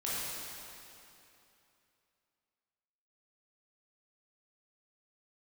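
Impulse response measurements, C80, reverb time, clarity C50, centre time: −2.5 dB, 2.9 s, −4.5 dB, 191 ms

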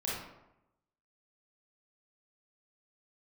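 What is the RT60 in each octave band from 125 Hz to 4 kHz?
1.0, 0.95, 0.90, 0.85, 0.70, 0.50 seconds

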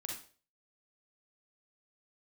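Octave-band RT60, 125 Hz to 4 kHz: 0.45, 0.40, 0.45, 0.35, 0.35, 0.40 seconds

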